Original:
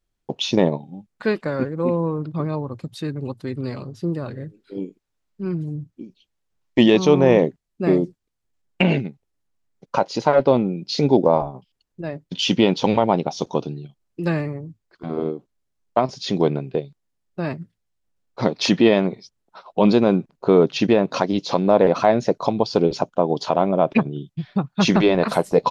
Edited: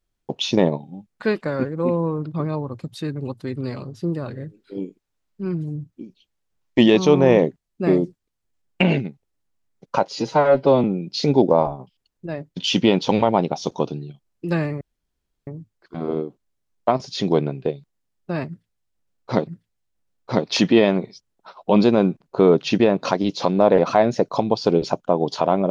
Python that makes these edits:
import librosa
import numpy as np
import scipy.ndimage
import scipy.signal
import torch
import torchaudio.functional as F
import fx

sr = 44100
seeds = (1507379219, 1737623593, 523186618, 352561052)

y = fx.edit(x, sr, fx.stretch_span(start_s=10.09, length_s=0.5, factor=1.5),
    fx.insert_room_tone(at_s=14.56, length_s=0.66),
    fx.repeat(start_s=17.56, length_s=1.0, count=2), tone=tone)